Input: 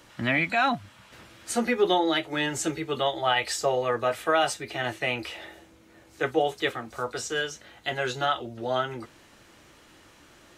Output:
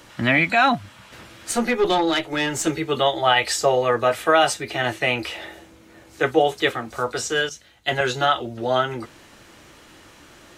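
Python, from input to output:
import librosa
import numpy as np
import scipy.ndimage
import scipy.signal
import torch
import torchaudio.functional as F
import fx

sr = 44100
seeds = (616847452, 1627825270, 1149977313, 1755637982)

y = fx.tube_stage(x, sr, drive_db=19.0, bias=0.4, at=(1.51, 2.67))
y = fx.band_widen(y, sr, depth_pct=70, at=(7.49, 8.01))
y = y * 10.0 ** (6.5 / 20.0)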